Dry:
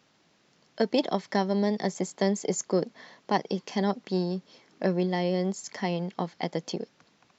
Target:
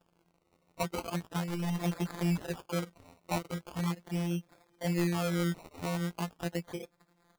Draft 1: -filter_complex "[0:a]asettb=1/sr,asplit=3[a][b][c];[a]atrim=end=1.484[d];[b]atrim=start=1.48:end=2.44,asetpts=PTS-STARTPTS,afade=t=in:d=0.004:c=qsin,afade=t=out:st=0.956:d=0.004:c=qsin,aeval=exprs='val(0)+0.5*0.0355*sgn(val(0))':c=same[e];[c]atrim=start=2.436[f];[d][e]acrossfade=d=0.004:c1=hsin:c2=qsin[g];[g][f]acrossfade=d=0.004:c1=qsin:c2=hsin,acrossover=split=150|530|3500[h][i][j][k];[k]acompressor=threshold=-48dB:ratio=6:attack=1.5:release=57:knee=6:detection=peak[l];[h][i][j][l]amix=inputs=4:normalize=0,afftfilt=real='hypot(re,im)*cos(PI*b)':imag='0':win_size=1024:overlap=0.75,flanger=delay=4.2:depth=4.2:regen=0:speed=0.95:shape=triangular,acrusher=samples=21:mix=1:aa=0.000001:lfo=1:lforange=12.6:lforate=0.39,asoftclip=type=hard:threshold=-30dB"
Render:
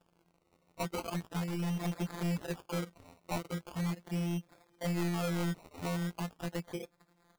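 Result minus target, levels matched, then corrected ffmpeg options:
compressor: peak gain reduction +6.5 dB; hard clip: distortion +9 dB
-filter_complex "[0:a]asettb=1/sr,asplit=3[a][b][c];[a]atrim=end=1.484[d];[b]atrim=start=1.48:end=2.44,asetpts=PTS-STARTPTS,afade=t=in:d=0.004:c=qsin,afade=t=out:st=0.956:d=0.004:c=qsin,aeval=exprs='val(0)+0.5*0.0355*sgn(val(0))':c=same[e];[c]atrim=start=2.436[f];[d][e]acrossfade=d=0.004:c1=hsin:c2=qsin[g];[g][f]acrossfade=d=0.004:c1=qsin:c2=hsin,acrossover=split=150|530|3500[h][i][j][k];[k]acompressor=threshold=-40dB:ratio=6:attack=1.5:release=57:knee=6:detection=peak[l];[h][i][j][l]amix=inputs=4:normalize=0,afftfilt=real='hypot(re,im)*cos(PI*b)':imag='0':win_size=1024:overlap=0.75,flanger=delay=4.2:depth=4.2:regen=0:speed=0.95:shape=triangular,acrusher=samples=21:mix=1:aa=0.000001:lfo=1:lforange=12.6:lforate=0.39,asoftclip=type=hard:threshold=-23dB"

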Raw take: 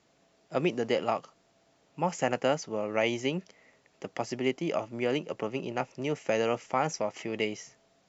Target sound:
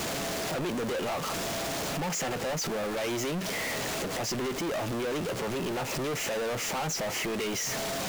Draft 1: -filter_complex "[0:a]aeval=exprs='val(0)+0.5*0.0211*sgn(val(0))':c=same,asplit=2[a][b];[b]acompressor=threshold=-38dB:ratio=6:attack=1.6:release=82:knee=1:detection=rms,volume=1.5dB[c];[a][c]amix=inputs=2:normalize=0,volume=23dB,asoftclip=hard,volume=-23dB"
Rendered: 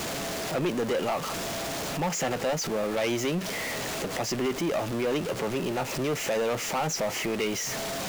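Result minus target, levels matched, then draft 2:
overloaded stage: distortion -6 dB
-filter_complex "[0:a]aeval=exprs='val(0)+0.5*0.0211*sgn(val(0))':c=same,asplit=2[a][b];[b]acompressor=threshold=-38dB:ratio=6:attack=1.6:release=82:knee=1:detection=rms,volume=1.5dB[c];[a][c]amix=inputs=2:normalize=0,volume=29.5dB,asoftclip=hard,volume=-29.5dB"

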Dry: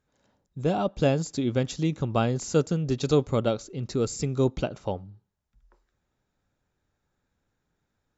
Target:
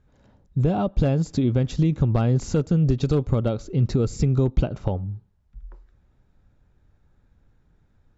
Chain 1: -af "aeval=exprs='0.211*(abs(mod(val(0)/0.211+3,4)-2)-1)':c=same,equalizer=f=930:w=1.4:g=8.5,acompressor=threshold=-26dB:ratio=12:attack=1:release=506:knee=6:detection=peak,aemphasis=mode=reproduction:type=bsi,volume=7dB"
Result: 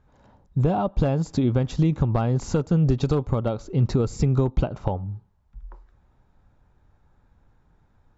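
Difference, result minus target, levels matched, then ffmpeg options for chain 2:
1000 Hz band +4.0 dB
-af "aeval=exprs='0.211*(abs(mod(val(0)/0.211+3,4)-2)-1)':c=same,acompressor=threshold=-26dB:ratio=12:attack=1:release=506:knee=6:detection=peak,aemphasis=mode=reproduction:type=bsi,volume=7dB"

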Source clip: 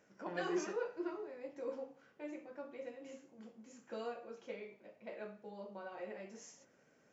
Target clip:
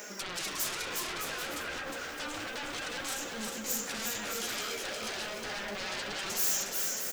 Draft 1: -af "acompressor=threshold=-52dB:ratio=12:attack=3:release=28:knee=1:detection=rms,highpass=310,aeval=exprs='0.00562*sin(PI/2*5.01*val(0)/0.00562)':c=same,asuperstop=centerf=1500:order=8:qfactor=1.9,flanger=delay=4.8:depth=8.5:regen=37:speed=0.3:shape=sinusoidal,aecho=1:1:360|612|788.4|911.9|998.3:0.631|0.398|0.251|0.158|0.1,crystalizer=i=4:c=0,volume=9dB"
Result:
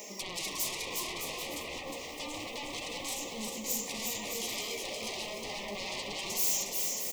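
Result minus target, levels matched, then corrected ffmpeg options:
2000 Hz band -3.5 dB
-af "acompressor=threshold=-52dB:ratio=12:attack=3:release=28:knee=1:detection=rms,highpass=310,aeval=exprs='0.00562*sin(PI/2*5.01*val(0)/0.00562)':c=same,flanger=delay=4.8:depth=8.5:regen=37:speed=0.3:shape=sinusoidal,aecho=1:1:360|612|788.4|911.9|998.3:0.631|0.398|0.251|0.158|0.1,crystalizer=i=4:c=0,volume=9dB"

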